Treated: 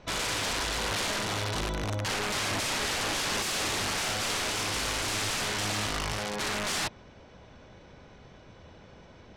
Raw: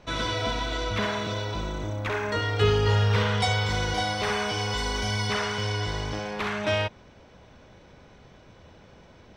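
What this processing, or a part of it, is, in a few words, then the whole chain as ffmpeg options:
overflowing digital effects unit: -af "aeval=exprs='(mod(16.8*val(0)+1,2)-1)/16.8':channel_layout=same,lowpass=8800"

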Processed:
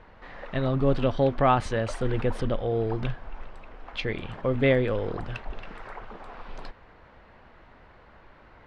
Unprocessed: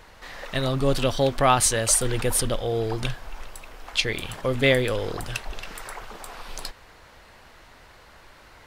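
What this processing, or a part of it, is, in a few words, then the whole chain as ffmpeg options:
phone in a pocket: -af "lowpass=3100,equalizer=frequency=210:width_type=o:width=0.86:gain=3,highshelf=frequency=2400:gain=-10,volume=-1dB"

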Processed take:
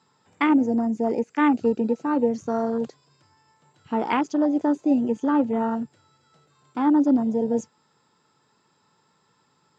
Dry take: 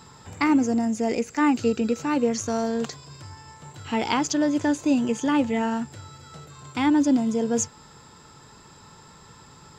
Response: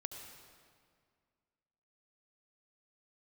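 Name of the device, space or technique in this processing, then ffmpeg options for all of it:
over-cleaned archive recording: -af "highpass=170,lowpass=6500,afwtdn=0.0398,volume=1.5dB"

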